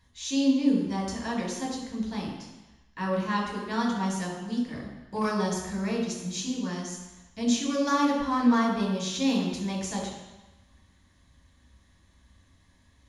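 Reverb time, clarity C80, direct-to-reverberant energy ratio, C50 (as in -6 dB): 1.1 s, 5.0 dB, -2.0 dB, 3.0 dB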